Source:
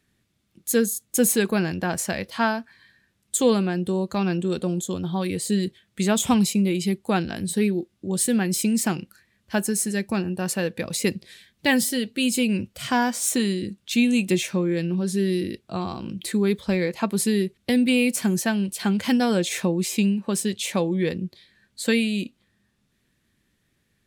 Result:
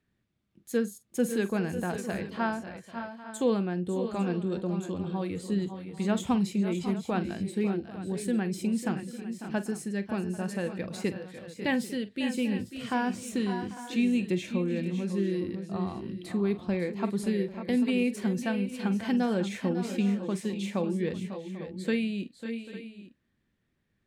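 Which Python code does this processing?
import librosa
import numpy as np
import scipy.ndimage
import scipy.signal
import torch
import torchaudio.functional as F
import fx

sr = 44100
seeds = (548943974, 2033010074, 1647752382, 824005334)

p1 = fx.lowpass(x, sr, hz=1900.0, slope=6)
p2 = p1 + fx.echo_multitap(p1, sr, ms=(45, 547, 573, 792, 851), db=(-15.0, -12.0, -11.5, -18.5, -15.5), dry=0)
y = F.gain(torch.from_numpy(p2), -6.5).numpy()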